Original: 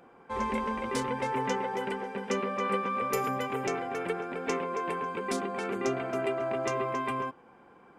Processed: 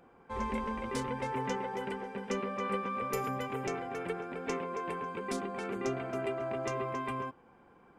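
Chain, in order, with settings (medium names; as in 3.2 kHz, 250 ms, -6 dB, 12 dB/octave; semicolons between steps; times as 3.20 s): bass shelf 110 Hz +11 dB; trim -5 dB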